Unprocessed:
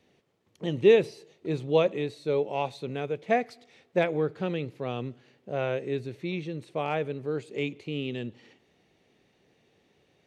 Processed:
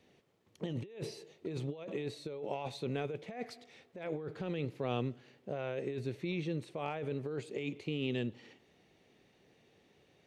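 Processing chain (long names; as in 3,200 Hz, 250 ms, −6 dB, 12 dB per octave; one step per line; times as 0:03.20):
compressor whose output falls as the input rises −33 dBFS, ratio −1
level −5.5 dB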